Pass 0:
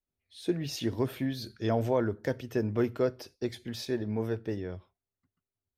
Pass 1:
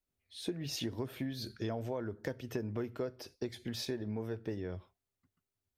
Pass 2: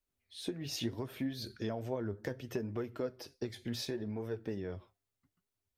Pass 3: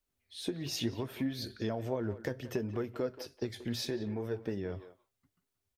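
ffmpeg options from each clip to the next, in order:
ffmpeg -i in.wav -af "acompressor=threshold=-36dB:ratio=6,volume=1.5dB" out.wav
ffmpeg -i in.wav -af "flanger=delay=1.6:depth=8.7:regen=60:speed=0.7:shape=triangular,volume=4dB" out.wav
ffmpeg -i in.wav -filter_complex "[0:a]asplit=2[link_01][link_02];[link_02]adelay=180,highpass=300,lowpass=3400,asoftclip=type=hard:threshold=-33dB,volume=-13dB[link_03];[link_01][link_03]amix=inputs=2:normalize=0,volume=2.5dB" out.wav

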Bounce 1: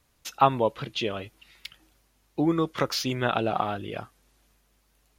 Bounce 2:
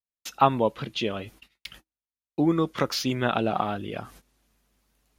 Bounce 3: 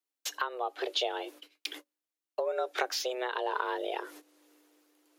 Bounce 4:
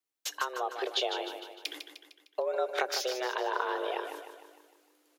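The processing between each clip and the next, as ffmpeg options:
ffmpeg -i in.wav -af "agate=range=-41dB:threshold=-52dB:ratio=16:detection=peak,equalizer=frequency=220:width_type=o:width=0.74:gain=4.5,areverse,acompressor=mode=upward:threshold=-40dB:ratio=2.5,areverse" out.wav
ffmpeg -i in.wav -af "afreqshift=250,acompressor=threshold=-31dB:ratio=10,tremolo=f=1.1:d=0.37,volume=4.5dB" out.wav
ffmpeg -i in.wav -af "aecho=1:1:152|304|456|608|760|912:0.398|0.199|0.0995|0.0498|0.0249|0.0124" out.wav

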